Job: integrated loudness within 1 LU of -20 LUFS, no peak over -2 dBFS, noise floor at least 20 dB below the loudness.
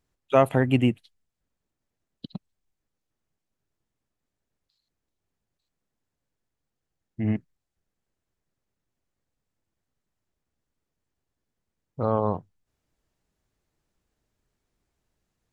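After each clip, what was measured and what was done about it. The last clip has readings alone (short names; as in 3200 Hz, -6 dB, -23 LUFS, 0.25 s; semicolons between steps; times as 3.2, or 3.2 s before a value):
loudness -25.0 LUFS; peak -5.5 dBFS; loudness target -20.0 LUFS
-> gain +5 dB; limiter -2 dBFS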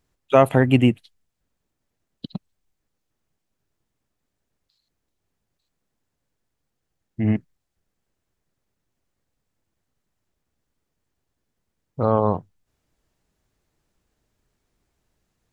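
loudness -20.0 LUFS; peak -2.0 dBFS; noise floor -79 dBFS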